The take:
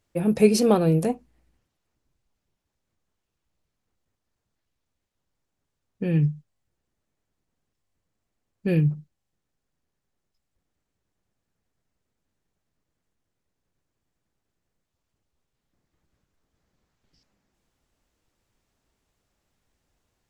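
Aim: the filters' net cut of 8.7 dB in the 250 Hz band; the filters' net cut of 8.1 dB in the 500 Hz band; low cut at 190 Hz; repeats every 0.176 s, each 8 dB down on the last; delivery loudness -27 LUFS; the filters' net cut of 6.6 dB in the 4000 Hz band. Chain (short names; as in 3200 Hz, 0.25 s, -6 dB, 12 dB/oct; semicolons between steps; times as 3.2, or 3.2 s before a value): HPF 190 Hz; bell 250 Hz -7.5 dB; bell 500 Hz -7 dB; bell 4000 Hz -9 dB; feedback echo 0.176 s, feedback 40%, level -8 dB; gain +3.5 dB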